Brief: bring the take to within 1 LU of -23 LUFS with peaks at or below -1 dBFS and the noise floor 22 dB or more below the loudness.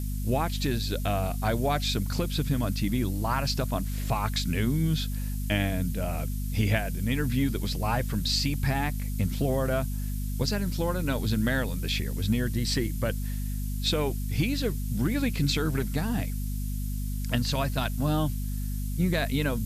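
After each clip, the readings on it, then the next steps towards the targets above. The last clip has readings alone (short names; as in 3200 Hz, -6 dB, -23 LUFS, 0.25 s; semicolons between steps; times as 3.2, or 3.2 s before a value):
hum 50 Hz; harmonics up to 250 Hz; hum level -28 dBFS; noise floor -31 dBFS; noise floor target -51 dBFS; loudness -28.5 LUFS; peak -12.5 dBFS; loudness target -23.0 LUFS
-> notches 50/100/150/200/250 Hz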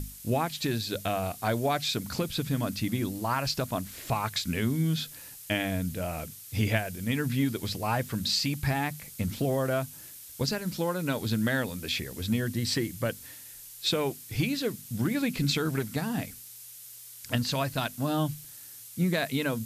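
hum none; noise floor -47 dBFS; noise floor target -52 dBFS
-> denoiser 6 dB, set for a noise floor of -47 dBFS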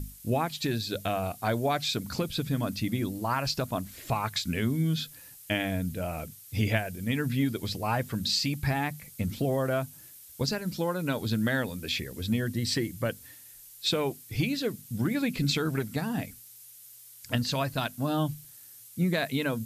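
noise floor -50 dBFS; noise floor target -52 dBFS
-> denoiser 6 dB, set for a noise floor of -50 dBFS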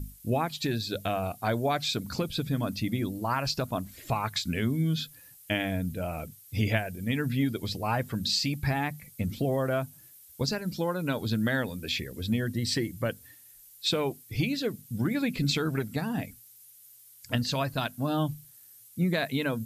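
noise floor -54 dBFS; loudness -30.0 LUFS; peak -14.5 dBFS; loudness target -23.0 LUFS
-> gain +7 dB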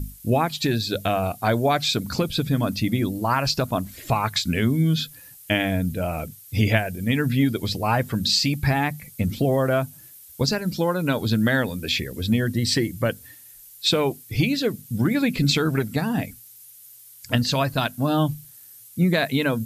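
loudness -23.0 LUFS; peak -7.5 dBFS; noise floor -47 dBFS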